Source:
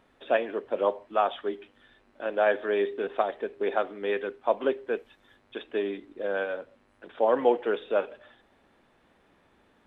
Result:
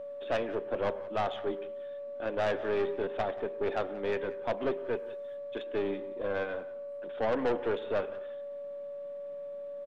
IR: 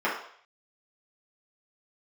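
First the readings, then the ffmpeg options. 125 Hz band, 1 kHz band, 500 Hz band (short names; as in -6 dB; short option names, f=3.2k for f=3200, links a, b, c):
n/a, -6.5 dB, -4.0 dB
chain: -filter_complex "[0:a]highpass=f=120:w=0.5412,highpass=f=120:w=1.3066,lowshelf=f=220:g=9.5,aeval=exprs='val(0)+0.0178*sin(2*PI*570*n/s)':c=same,aeval=exprs='(tanh(12.6*val(0)+0.35)-tanh(0.35))/12.6':c=same,asplit=2[a][b];[b]adelay=180.8,volume=-18dB,highshelf=f=4k:g=-4.07[c];[a][c]amix=inputs=2:normalize=0,asplit=2[d][e];[1:a]atrim=start_sample=2205,adelay=99[f];[e][f]afir=irnorm=-1:irlink=0,volume=-32dB[g];[d][g]amix=inputs=2:normalize=0,volume=-2.5dB"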